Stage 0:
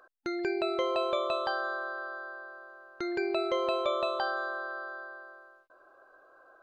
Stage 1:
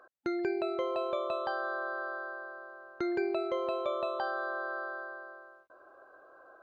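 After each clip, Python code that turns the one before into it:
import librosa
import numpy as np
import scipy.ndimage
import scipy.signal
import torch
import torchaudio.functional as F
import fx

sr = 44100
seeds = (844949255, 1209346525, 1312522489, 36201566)

y = scipy.signal.sosfilt(scipy.signal.butter(2, 48.0, 'highpass', fs=sr, output='sos'), x)
y = fx.rider(y, sr, range_db=4, speed_s=0.5)
y = fx.high_shelf(y, sr, hz=2200.0, db=-10.0)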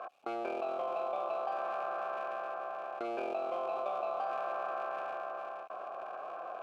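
y = fx.cycle_switch(x, sr, every=3, mode='muted')
y = fx.vowel_filter(y, sr, vowel='a')
y = fx.env_flatten(y, sr, amount_pct=70)
y = y * librosa.db_to_amplitude(4.5)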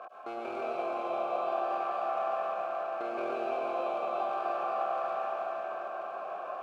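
y = fx.rev_plate(x, sr, seeds[0], rt60_s=4.6, hf_ratio=0.8, predelay_ms=95, drr_db=-4.5)
y = y * librosa.db_to_amplitude(-2.0)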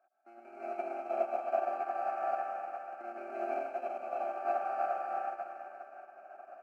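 y = fx.fixed_phaser(x, sr, hz=710.0, stages=8)
y = y + 10.0 ** (-3.5 / 20.0) * np.pad(y, (int(342 * sr / 1000.0), 0))[:len(y)]
y = fx.upward_expand(y, sr, threshold_db=-49.0, expansion=2.5)
y = y * librosa.db_to_amplitude(3.0)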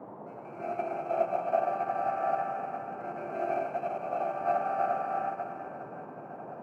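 y = fx.dmg_noise_band(x, sr, seeds[1], low_hz=130.0, high_hz=870.0, level_db=-49.0)
y = y * librosa.db_to_amplitude(4.0)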